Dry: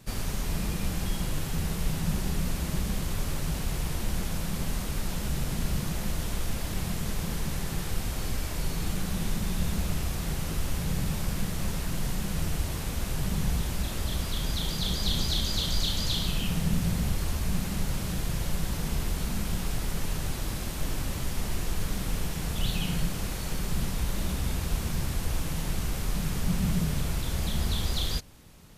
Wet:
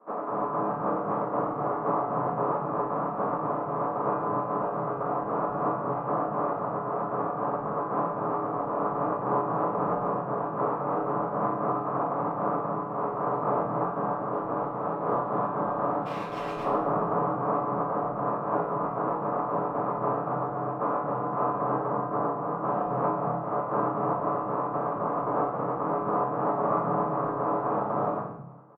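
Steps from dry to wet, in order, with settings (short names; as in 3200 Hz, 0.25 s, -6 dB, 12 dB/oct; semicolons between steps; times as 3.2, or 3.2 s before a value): spectral contrast lowered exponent 0.24; Chebyshev band-pass 130–1200 Hz, order 4; chopper 3.8 Hz, depth 65%, duty 70%; 16.01–16.64 hard clip -40 dBFS, distortion -21 dB; 21.87–22.65 air absorption 210 m; bands offset in time highs, lows 0.22 s, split 210 Hz; reverb RT60 0.70 s, pre-delay 7 ms, DRR -10 dB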